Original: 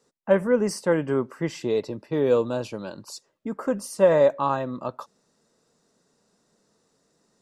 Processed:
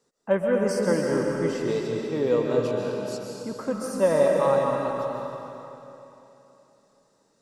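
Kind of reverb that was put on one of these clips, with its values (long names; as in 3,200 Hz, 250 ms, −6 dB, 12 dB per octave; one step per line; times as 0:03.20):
comb and all-pass reverb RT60 3.2 s, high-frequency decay 0.95×, pre-delay 95 ms, DRR −1 dB
level −3.5 dB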